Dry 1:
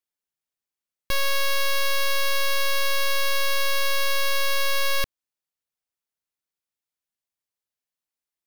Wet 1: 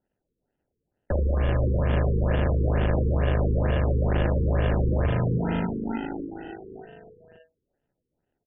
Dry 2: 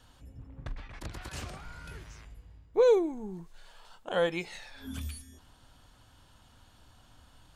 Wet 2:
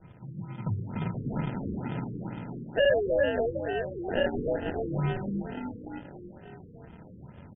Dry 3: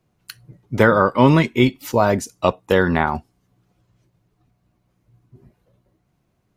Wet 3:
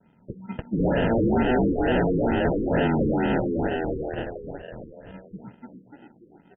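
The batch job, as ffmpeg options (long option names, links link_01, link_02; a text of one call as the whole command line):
ffmpeg -i in.wav -filter_complex "[0:a]afreqshift=70,equalizer=frequency=160:width_type=o:width=1.1:gain=8,flanger=delay=2.1:depth=2.2:regen=-86:speed=1.5:shape=triangular,asplit=9[link_01][link_02][link_03][link_04][link_05][link_06][link_07][link_08][link_09];[link_02]adelay=293,afreqshift=52,volume=-4dB[link_10];[link_03]adelay=586,afreqshift=104,volume=-8.7dB[link_11];[link_04]adelay=879,afreqshift=156,volume=-13.5dB[link_12];[link_05]adelay=1172,afreqshift=208,volume=-18.2dB[link_13];[link_06]adelay=1465,afreqshift=260,volume=-22.9dB[link_14];[link_07]adelay=1758,afreqshift=312,volume=-27.7dB[link_15];[link_08]adelay=2051,afreqshift=364,volume=-32.4dB[link_16];[link_09]adelay=2344,afreqshift=416,volume=-37.1dB[link_17];[link_01][link_10][link_11][link_12][link_13][link_14][link_15][link_16][link_17]amix=inputs=9:normalize=0,asplit=2[link_18][link_19];[link_19]acompressor=threshold=-28dB:ratio=6,volume=1dB[link_20];[link_18][link_20]amix=inputs=2:normalize=0,highshelf=frequency=4500:gain=7,acrusher=samples=39:mix=1:aa=0.000001,asoftclip=type=tanh:threshold=-19dB,afftfilt=real='re*lt(b*sr/1024,490*pow(3600/490,0.5+0.5*sin(2*PI*2.2*pts/sr)))':imag='im*lt(b*sr/1024,490*pow(3600/490,0.5+0.5*sin(2*PI*2.2*pts/sr)))':win_size=1024:overlap=0.75,volume=1dB" out.wav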